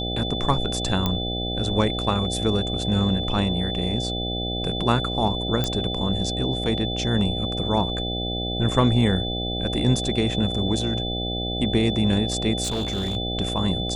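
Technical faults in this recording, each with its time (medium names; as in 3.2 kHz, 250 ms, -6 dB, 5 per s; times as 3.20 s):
buzz 60 Hz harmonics 13 -29 dBFS
whine 3.5 kHz -29 dBFS
1.06 s: pop -9 dBFS
5.64 s: pop -10 dBFS
12.63–13.17 s: clipped -21.5 dBFS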